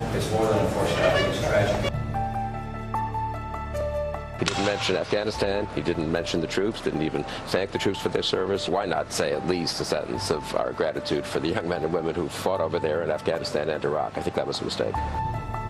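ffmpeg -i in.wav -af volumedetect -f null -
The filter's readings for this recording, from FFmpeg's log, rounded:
mean_volume: -26.1 dB
max_volume: -6.6 dB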